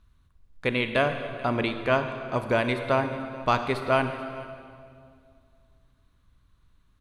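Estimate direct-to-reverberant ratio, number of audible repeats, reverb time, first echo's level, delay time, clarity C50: 7.0 dB, 1, 2.2 s, -19.5 dB, 435 ms, 8.0 dB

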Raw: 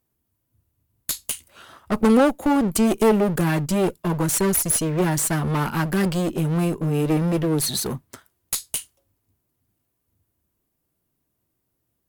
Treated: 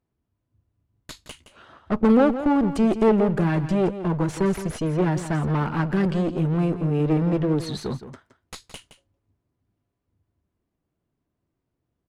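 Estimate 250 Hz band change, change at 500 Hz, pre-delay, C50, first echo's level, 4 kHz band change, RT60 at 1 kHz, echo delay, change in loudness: -0.5 dB, -1.0 dB, no reverb, no reverb, -12.0 dB, -8.5 dB, no reverb, 168 ms, -1.0 dB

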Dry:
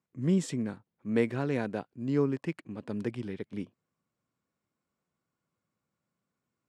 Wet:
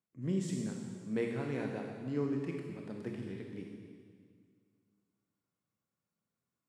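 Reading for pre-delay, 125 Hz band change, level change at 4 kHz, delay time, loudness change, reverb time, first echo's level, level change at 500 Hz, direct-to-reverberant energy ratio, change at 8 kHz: 22 ms, -5.5 dB, -5.5 dB, no echo, -6.0 dB, 2.0 s, no echo, -6.0 dB, 1.0 dB, no reading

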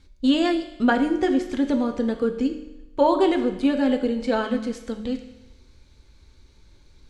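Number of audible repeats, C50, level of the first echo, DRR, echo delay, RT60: no echo, 9.0 dB, no echo, 5.5 dB, no echo, 0.95 s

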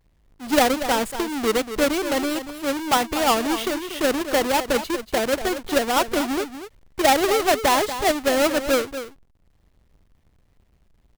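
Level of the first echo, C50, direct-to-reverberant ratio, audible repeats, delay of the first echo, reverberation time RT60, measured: -11.0 dB, no reverb, no reverb, 1, 237 ms, no reverb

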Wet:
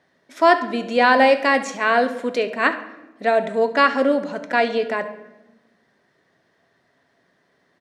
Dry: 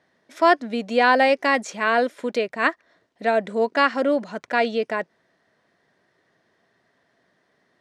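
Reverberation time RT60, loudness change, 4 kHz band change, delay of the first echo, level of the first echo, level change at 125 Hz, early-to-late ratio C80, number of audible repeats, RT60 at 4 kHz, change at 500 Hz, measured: 1.0 s, +2.5 dB, +2.0 dB, 69 ms, -16.0 dB, no reading, 14.5 dB, 1, 0.65 s, +2.5 dB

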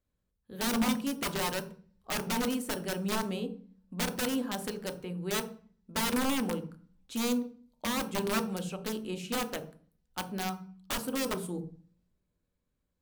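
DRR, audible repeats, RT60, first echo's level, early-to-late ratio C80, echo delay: 6.0 dB, no echo, 0.40 s, no echo, 17.5 dB, no echo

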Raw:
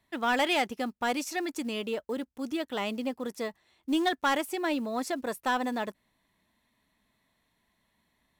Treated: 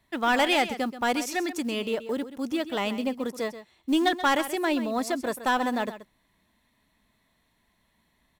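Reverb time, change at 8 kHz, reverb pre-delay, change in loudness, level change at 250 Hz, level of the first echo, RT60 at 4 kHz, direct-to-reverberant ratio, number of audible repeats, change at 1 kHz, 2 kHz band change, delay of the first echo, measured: no reverb, +3.5 dB, no reverb, +4.0 dB, +4.0 dB, -13.0 dB, no reverb, no reverb, 1, +4.0 dB, +3.5 dB, 130 ms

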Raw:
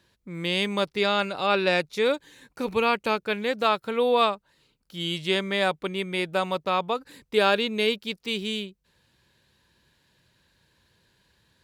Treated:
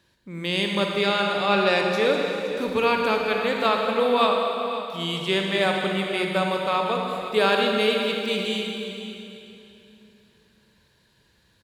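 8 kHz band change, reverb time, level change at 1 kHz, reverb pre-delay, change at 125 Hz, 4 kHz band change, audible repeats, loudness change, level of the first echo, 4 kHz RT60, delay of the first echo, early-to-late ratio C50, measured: +2.5 dB, 3.0 s, +3.0 dB, 34 ms, +3.5 dB, +2.5 dB, 1, +2.5 dB, -13.5 dB, 2.7 s, 517 ms, 1.0 dB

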